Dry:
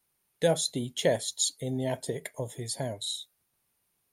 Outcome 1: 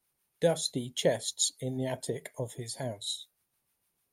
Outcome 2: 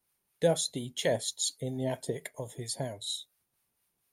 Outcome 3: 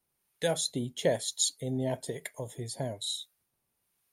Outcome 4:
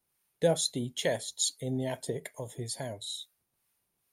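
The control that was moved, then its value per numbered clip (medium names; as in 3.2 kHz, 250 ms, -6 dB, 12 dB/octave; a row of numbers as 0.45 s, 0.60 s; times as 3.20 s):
harmonic tremolo, rate: 6.6 Hz, 4.3 Hz, 1.1 Hz, 2.3 Hz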